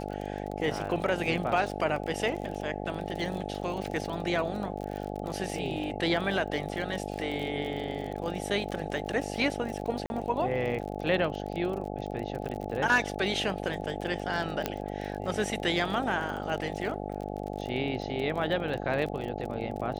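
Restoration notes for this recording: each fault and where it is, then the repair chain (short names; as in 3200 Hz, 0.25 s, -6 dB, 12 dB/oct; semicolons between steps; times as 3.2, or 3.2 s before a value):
buzz 50 Hz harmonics 17 -36 dBFS
crackle 40/s -35 dBFS
10.06–10.1 gap 41 ms
14.66 pop -13 dBFS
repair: de-click; de-hum 50 Hz, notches 17; interpolate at 10.06, 41 ms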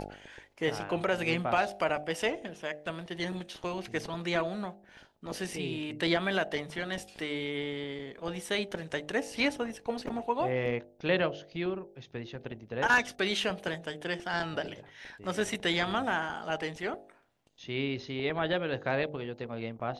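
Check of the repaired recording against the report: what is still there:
none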